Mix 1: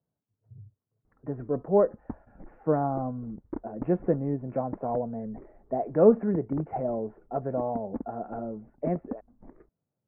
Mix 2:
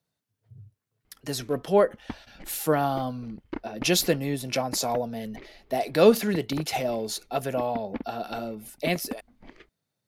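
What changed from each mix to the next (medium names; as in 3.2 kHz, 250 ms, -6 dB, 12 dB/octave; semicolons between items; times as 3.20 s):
master: remove Gaussian low-pass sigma 7.8 samples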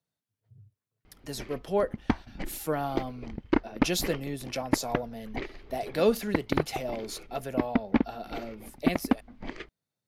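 speech -6.5 dB; background +10.5 dB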